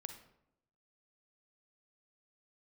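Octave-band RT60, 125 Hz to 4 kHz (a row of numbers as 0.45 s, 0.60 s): 1.0 s, 0.95 s, 0.85 s, 0.75 s, 0.60 s, 0.45 s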